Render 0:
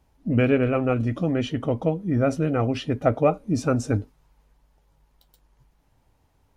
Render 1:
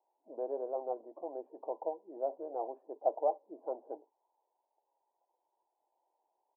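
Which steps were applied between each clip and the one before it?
Chebyshev band-pass 350–980 Hz, order 4; comb 1.2 ms, depth 52%; gain -9 dB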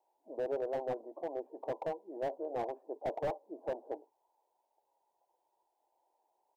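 slew limiter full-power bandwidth 12 Hz; gain +3 dB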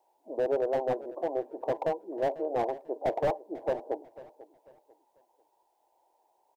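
feedback echo 0.494 s, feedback 32%, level -18 dB; gain +7.5 dB

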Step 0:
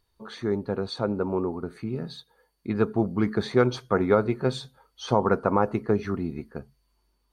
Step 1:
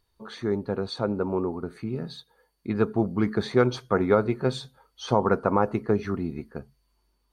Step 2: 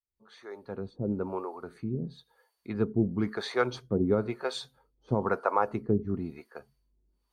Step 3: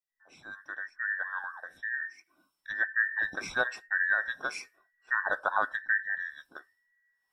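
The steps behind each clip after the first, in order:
nothing audible
opening faded in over 1.11 s; harmonic tremolo 1 Hz, depth 100%, crossover 460 Hz
band inversion scrambler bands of 2000 Hz; gain -2 dB

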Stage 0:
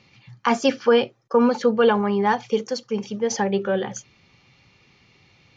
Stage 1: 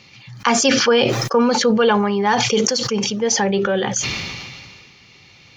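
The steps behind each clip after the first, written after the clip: in parallel at +2.5 dB: compressor, threshold -27 dBFS, peak gain reduction 14 dB; on the sum: high shelf 2300 Hz +8.5 dB; sustainer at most 29 dB/s; gain -2 dB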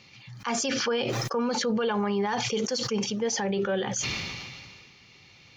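limiter -13 dBFS, peak gain reduction 11 dB; gain -6.5 dB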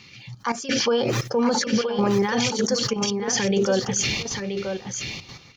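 LFO notch saw up 1.8 Hz 560–3600 Hz; step gate "xxxx.x..xxxxxx." 174 bpm -12 dB; echo 0.976 s -7 dB; gain +6.5 dB

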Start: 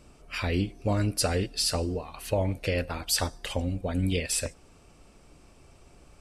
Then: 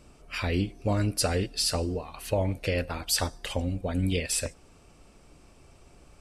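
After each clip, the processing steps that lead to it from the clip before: nothing audible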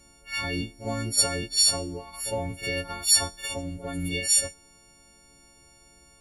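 frequency quantiser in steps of 4 st; reverse echo 51 ms -11 dB; gain -4.5 dB

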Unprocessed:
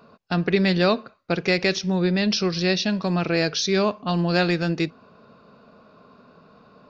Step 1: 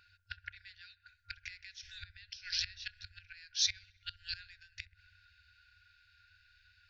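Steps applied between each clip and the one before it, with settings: flipped gate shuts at -13 dBFS, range -25 dB; FFT band-reject 100–1400 Hz; dark delay 65 ms, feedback 74%, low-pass 840 Hz, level -9 dB; gain -2.5 dB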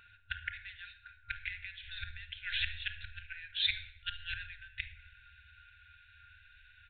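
shoebox room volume 2400 m³, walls furnished, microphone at 1.6 m; downsampling 8000 Hz; gain +6.5 dB

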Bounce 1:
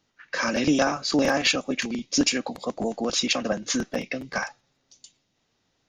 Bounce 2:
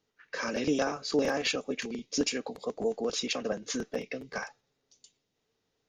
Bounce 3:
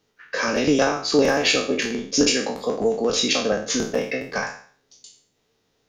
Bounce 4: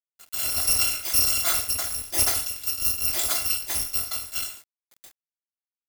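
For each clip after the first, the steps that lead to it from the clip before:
bell 440 Hz +12 dB 0.26 oct; gain -8.5 dB
spectral trails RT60 0.48 s; gain +8.5 dB
FFT order left unsorted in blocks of 256 samples; bit-crush 7-bit; gain -3.5 dB

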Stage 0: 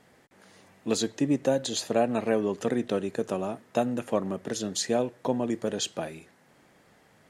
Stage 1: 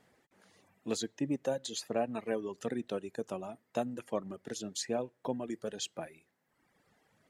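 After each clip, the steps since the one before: reverb removal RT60 1.2 s; gain -7.5 dB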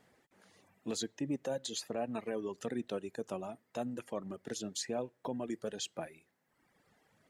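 limiter -26.5 dBFS, peak gain reduction 7.5 dB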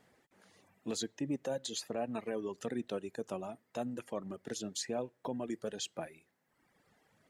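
nothing audible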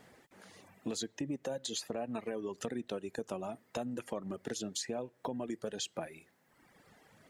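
compressor 4:1, threshold -44 dBFS, peak gain reduction 11 dB; gain +8 dB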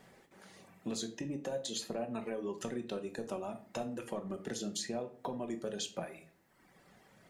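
shoebox room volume 470 m³, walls furnished, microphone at 1.1 m; gain -1.5 dB

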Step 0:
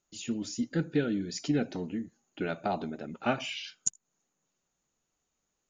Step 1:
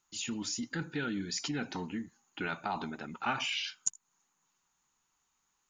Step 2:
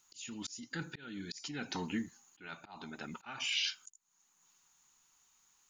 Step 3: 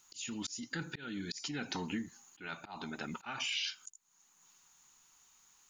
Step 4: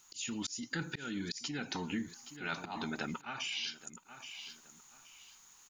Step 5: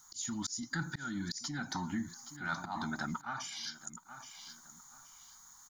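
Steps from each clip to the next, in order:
resonant low shelf 750 Hz -6.5 dB, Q 3; in parallel at -2 dB: negative-ratio compressor -38 dBFS, ratio -0.5; on the sum: gain -2.5 dB
high shelf 2500 Hz +9 dB; auto swell 0.643 s; gain +1.5 dB
compressor 2.5:1, threshold -41 dBFS, peak gain reduction 8 dB; gain +4.5 dB
feedback echo 0.823 s, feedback 25%, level -16.5 dB; vocal rider within 4 dB 0.5 s; gain +1 dB
in parallel at -6.5 dB: soft clip -30.5 dBFS, distortion -17 dB; on the sum: fixed phaser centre 1100 Hz, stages 4; gain +1.5 dB

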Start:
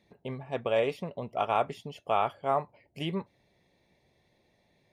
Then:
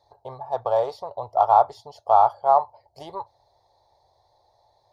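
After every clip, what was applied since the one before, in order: in parallel at -11 dB: soft clip -29 dBFS, distortion -7 dB; on the sum: EQ curve 110 Hz 0 dB, 190 Hz -26 dB, 860 Hz +14 dB, 2600 Hz -23 dB, 4300 Hz +7 dB, 8000 Hz -5 dB; gain +1 dB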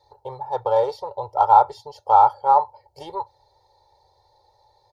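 comb 2.2 ms, depth 96%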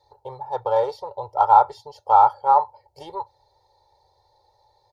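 dynamic EQ 1500 Hz, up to +4 dB, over -27 dBFS, Q 1; gain -2 dB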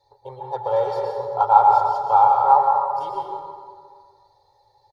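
comb 7.3 ms, depth 39%; plate-style reverb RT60 1.9 s, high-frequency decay 0.55×, pre-delay 0.1 s, DRR 0 dB; gain -2.5 dB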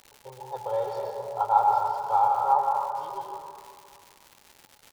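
crackle 280/s -30 dBFS; frequency-shifting echo 0.265 s, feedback 44%, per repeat +70 Hz, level -18 dB; gain -7.5 dB

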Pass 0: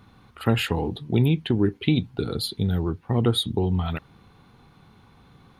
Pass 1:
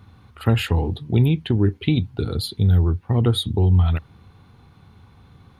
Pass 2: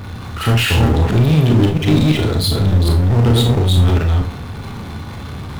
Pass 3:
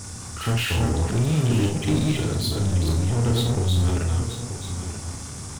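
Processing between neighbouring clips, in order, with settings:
bell 85 Hz +11.5 dB 0.84 oct
reverse delay 0.222 s, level -1 dB; power-law curve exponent 0.5; Schroeder reverb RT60 0.3 s, combs from 26 ms, DRR 3 dB; gain -3 dB
band noise 4900–9800 Hz -32 dBFS; echo 0.934 s -11 dB; gain -9 dB

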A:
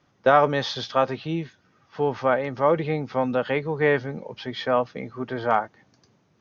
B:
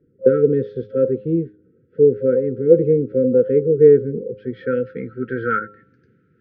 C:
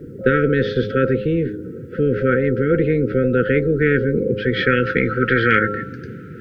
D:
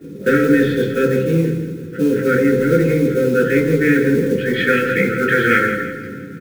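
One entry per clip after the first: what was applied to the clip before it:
FFT band-reject 530–1300 Hz; low-pass sweep 490 Hz -> 1200 Hz, 4.22–4.82; de-hum 103.9 Hz, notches 13; gain +5 dB
spectral compressor 4:1
modulation noise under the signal 20 dB; feedback echo 0.166 s, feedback 45%, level -10.5 dB; reverb RT60 0.45 s, pre-delay 3 ms, DRR -3.5 dB; gain -5.5 dB

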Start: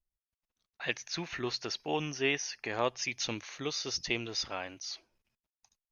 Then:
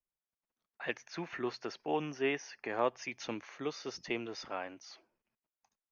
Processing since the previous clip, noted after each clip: three-band isolator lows -15 dB, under 160 Hz, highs -13 dB, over 2100 Hz; notch 3900 Hz, Q 18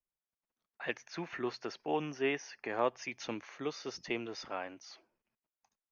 nothing audible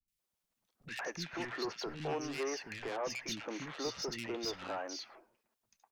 in parallel at +3 dB: compressor, threshold -40 dBFS, peak gain reduction 14.5 dB; on the sum: soft clip -32.5 dBFS, distortion -7 dB; three bands offset in time lows, highs, mids 80/190 ms, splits 260/1900 Hz; gain +1 dB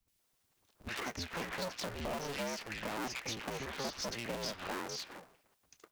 cycle switcher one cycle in 2, inverted; compressor 2.5:1, threshold -51 dBFS, peak gain reduction 12 dB; gain +9.5 dB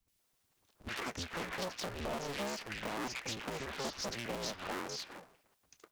Doppler distortion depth 0.4 ms

